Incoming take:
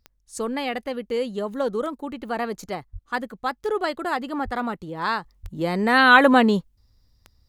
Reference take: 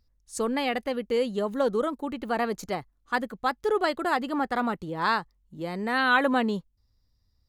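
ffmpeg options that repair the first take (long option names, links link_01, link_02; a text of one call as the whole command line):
ffmpeg -i in.wav -filter_complex "[0:a]adeclick=threshold=4,asplit=3[link_01][link_02][link_03];[link_01]afade=type=out:start_time=2.92:duration=0.02[link_04];[link_02]highpass=frequency=140:width=0.5412,highpass=frequency=140:width=1.3066,afade=type=in:start_time=2.92:duration=0.02,afade=type=out:start_time=3.04:duration=0.02[link_05];[link_03]afade=type=in:start_time=3.04:duration=0.02[link_06];[link_04][link_05][link_06]amix=inputs=3:normalize=0,asplit=3[link_07][link_08][link_09];[link_07]afade=type=out:start_time=4.44:duration=0.02[link_10];[link_08]highpass=frequency=140:width=0.5412,highpass=frequency=140:width=1.3066,afade=type=in:start_time=4.44:duration=0.02,afade=type=out:start_time=4.56:duration=0.02[link_11];[link_09]afade=type=in:start_time=4.56:duration=0.02[link_12];[link_10][link_11][link_12]amix=inputs=3:normalize=0,asplit=3[link_13][link_14][link_15];[link_13]afade=type=out:start_time=5.42:duration=0.02[link_16];[link_14]highpass=frequency=140:width=0.5412,highpass=frequency=140:width=1.3066,afade=type=in:start_time=5.42:duration=0.02,afade=type=out:start_time=5.54:duration=0.02[link_17];[link_15]afade=type=in:start_time=5.54:duration=0.02[link_18];[link_16][link_17][link_18]amix=inputs=3:normalize=0,asetnsamples=nb_out_samples=441:pad=0,asendcmd='5.24 volume volume -8.5dB',volume=0dB" out.wav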